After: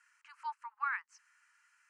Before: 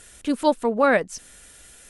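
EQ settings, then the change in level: rippled Chebyshev high-pass 870 Hz, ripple 3 dB; distance through air 160 m; static phaser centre 1.5 kHz, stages 4; -8.5 dB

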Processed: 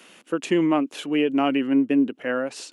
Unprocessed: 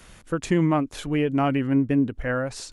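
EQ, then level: high-pass 260 Hz 24 dB/octave; bass shelf 330 Hz +9.5 dB; peaking EQ 2.8 kHz +9.5 dB 0.44 oct; -1.5 dB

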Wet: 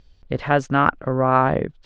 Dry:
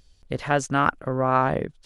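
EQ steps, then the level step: distance through air 190 m; +4.5 dB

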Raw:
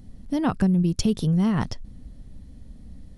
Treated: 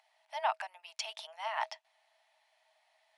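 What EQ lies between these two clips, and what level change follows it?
rippled Chebyshev high-pass 620 Hz, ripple 9 dB; treble shelf 5.7 kHz -12 dB; +4.0 dB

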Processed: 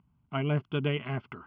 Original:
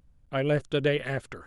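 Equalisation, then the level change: distance through air 280 m; cabinet simulation 180–3600 Hz, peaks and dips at 310 Hz -7 dB, 750 Hz -5 dB, 1.3 kHz -5 dB, 2.4 kHz -7 dB; static phaser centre 2.6 kHz, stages 8; +7.5 dB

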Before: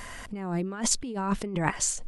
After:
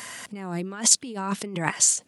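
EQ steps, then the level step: high-pass 120 Hz 24 dB/octave; treble shelf 2.4 kHz +10.5 dB; -1.0 dB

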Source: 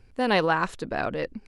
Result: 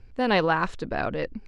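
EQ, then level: low-pass 6 kHz 12 dB/octave; bass shelf 86 Hz +8 dB; 0.0 dB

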